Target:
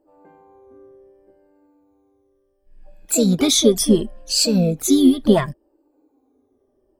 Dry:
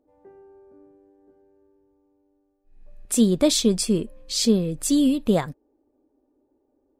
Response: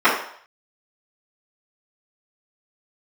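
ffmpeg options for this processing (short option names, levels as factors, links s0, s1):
-filter_complex "[0:a]afftfilt=real='re*pow(10,21/40*sin(2*PI*(1.3*log(max(b,1)*sr/1024/100)/log(2)-(-0.7)*(pts-256)/sr)))':imag='im*pow(10,21/40*sin(2*PI*(1.3*log(max(b,1)*sr/1024/100)/log(2)-(-0.7)*(pts-256)/sr)))':win_size=1024:overlap=0.75,asplit=2[s0][s1];[s1]asetrate=58866,aresample=44100,atempo=0.749154,volume=0.316[s2];[s0][s2]amix=inputs=2:normalize=0"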